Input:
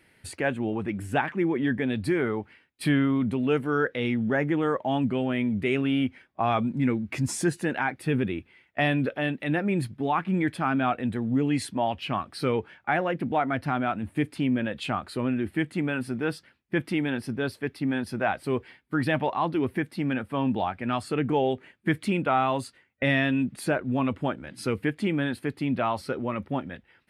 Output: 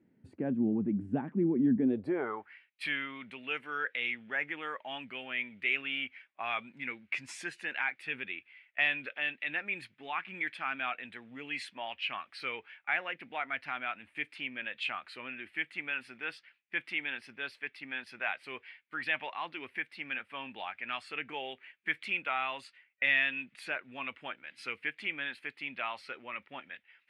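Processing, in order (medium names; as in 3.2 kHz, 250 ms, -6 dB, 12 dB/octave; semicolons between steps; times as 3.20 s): band-pass sweep 230 Hz -> 2.4 kHz, 1.77–2.61 s; trim +3 dB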